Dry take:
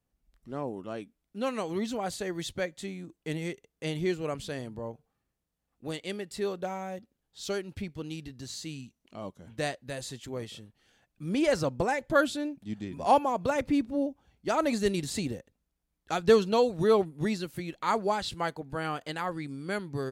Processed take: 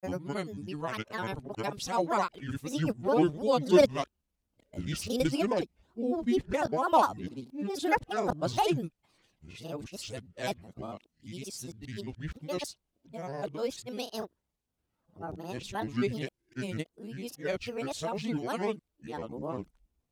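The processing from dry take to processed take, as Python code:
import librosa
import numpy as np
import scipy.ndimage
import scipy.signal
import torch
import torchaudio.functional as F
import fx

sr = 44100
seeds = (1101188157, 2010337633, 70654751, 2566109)

y = x[::-1].copy()
y = fx.notch(y, sr, hz=1600.0, q=5.4)
y = fx.granulator(y, sr, seeds[0], grain_ms=100.0, per_s=20.0, spray_ms=34.0, spread_st=7)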